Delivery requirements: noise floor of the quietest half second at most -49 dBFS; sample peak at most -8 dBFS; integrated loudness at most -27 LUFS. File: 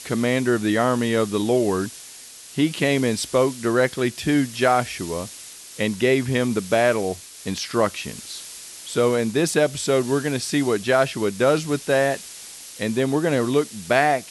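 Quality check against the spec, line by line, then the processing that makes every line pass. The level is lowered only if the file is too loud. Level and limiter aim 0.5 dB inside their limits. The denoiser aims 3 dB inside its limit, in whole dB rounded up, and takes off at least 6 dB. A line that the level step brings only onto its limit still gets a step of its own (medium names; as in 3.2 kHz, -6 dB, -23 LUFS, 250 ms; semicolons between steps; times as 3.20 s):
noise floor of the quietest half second -42 dBFS: fail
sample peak -4.0 dBFS: fail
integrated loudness -22.0 LUFS: fail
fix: noise reduction 6 dB, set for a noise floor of -42 dBFS; trim -5.5 dB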